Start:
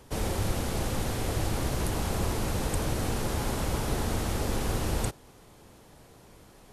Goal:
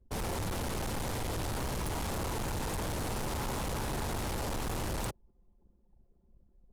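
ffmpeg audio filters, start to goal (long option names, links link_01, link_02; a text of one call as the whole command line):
ffmpeg -i in.wav -af "anlmdn=0.158,adynamicequalizer=threshold=0.00251:dfrequency=930:dqfactor=3.7:tfrequency=930:tqfactor=3.7:attack=5:release=100:ratio=0.375:range=2.5:mode=boostabove:tftype=bell,volume=32.5dB,asoftclip=hard,volume=-32.5dB" out.wav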